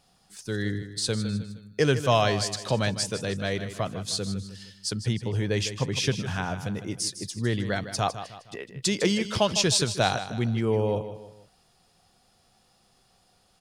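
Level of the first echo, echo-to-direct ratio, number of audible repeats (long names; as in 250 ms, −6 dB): −11.5 dB, −10.5 dB, 3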